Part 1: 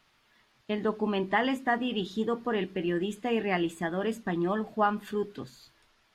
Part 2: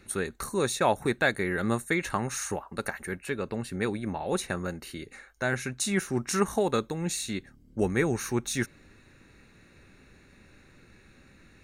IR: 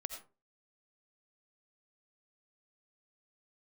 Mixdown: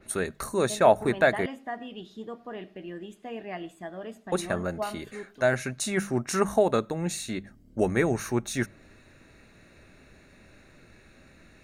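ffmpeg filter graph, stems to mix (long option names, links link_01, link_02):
-filter_complex "[0:a]volume=-12.5dB,asplit=2[link_01][link_02];[link_02]volume=-8.5dB[link_03];[1:a]bandreject=frequency=50:width_type=h:width=6,bandreject=frequency=100:width_type=h:width=6,bandreject=frequency=150:width_type=h:width=6,bandreject=frequency=200:width_type=h:width=6,adynamicequalizer=threshold=0.00631:dfrequency=2300:dqfactor=0.7:tfrequency=2300:tqfactor=0.7:attack=5:release=100:ratio=0.375:range=3:mode=cutabove:tftype=highshelf,volume=1dB,asplit=3[link_04][link_05][link_06];[link_04]atrim=end=1.46,asetpts=PTS-STARTPTS,afade=type=out:start_time=1.456:duration=0.004:curve=hsin[link_07];[link_05]atrim=start=1.46:end=4.32,asetpts=PTS-STARTPTS,volume=0[link_08];[link_06]atrim=start=4.32,asetpts=PTS-STARTPTS,afade=type=in:duration=0.004:curve=hsin[link_09];[link_07][link_08][link_09]concat=n=3:v=0:a=1,asplit=2[link_10][link_11];[link_11]volume=-24dB[link_12];[2:a]atrim=start_sample=2205[link_13];[link_03][link_12]amix=inputs=2:normalize=0[link_14];[link_14][link_13]afir=irnorm=-1:irlink=0[link_15];[link_01][link_10][link_15]amix=inputs=3:normalize=0,equalizer=frequency=640:width=5.5:gain=9.5"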